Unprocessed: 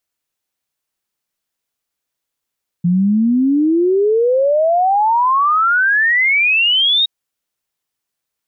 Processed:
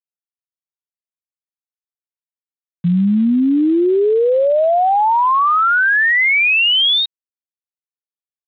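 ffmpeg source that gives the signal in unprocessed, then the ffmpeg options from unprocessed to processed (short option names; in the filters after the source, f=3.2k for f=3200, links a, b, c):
-f lavfi -i "aevalsrc='0.299*clip(min(t,4.22-t)/0.01,0,1)*sin(2*PI*170*4.22/log(3800/170)*(exp(log(3800/170)*t/4.22)-1))':d=4.22:s=44100"
-af "equalizer=f=75:t=o:w=0.34:g=-11,aresample=8000,aeval=exprs='val(0)*gte(abs(val(0)),0.0237)':c=same,aresample=44100"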